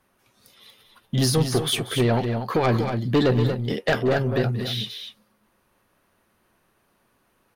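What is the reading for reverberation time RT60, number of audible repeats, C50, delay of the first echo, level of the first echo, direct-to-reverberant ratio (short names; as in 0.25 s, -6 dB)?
none, 2, none, 0.185 s, -17.0 dB, none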